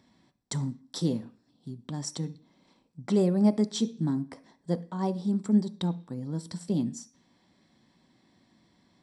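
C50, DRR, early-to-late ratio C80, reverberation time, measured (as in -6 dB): 18.0 dB, 10.5 dB, 22.5 dB, 0.45 s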